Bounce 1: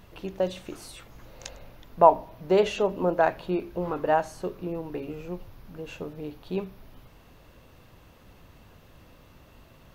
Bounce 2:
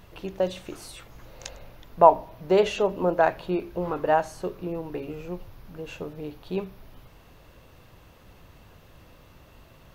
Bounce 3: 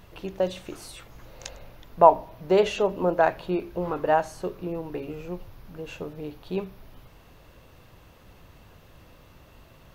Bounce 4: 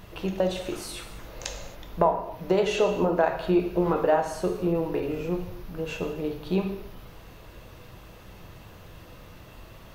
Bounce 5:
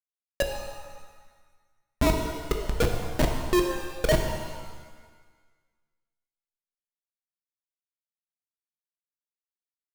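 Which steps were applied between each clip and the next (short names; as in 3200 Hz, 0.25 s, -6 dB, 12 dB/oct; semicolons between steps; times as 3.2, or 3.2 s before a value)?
bell 240 Hz -3 dB 0.61 oct; gain +1.5 dB
nothing audible
compressor 6:1, threshold -24 dBFS, peak gain reduction 15 dB; reverb, pre-delay 3 ms, DRR 4 dB; gain +4 dB
sine-wave speech; Schmitt trigger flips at -17 dBFS; shimmer reverb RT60 1.4 s, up +7 st, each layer -8 dB, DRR 3 dB; gain +7.5 dB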